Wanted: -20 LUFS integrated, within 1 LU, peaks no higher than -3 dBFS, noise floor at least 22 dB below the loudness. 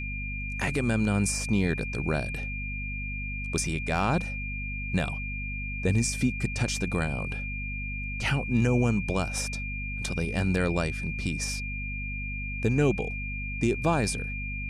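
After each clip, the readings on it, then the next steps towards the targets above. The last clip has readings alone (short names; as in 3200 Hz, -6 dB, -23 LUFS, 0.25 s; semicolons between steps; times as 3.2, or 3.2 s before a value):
hum 50 Hz; harmonics up to 250 Hz; hum level -32 dBFS; steady tone 2400 Hz; tone level -35 dBFS; loudness -29.0 LUFS; peak -12.5 dBFS; loudness target -20.0 LUFS
-> de-hum 50 Hz, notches 5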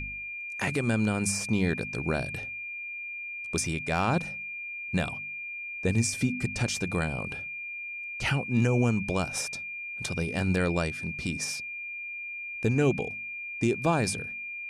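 hum none; steady tone 2400 Hz; tone level -35 dBFS
-> notch 2400 Hz, Q 30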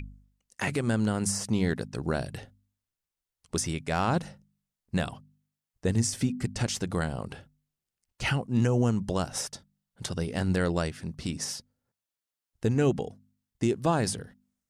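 steady tone none; loudness -29.5 LUFS; peak -13.5 dBFS; loudness target -20.0 LUFS
-> gain +9.5 dB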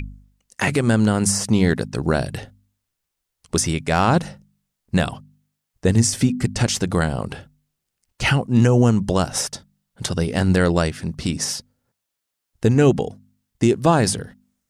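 loudness -20.0 LUFS; peak -4.0 dBFS; noise floor -80 dBFS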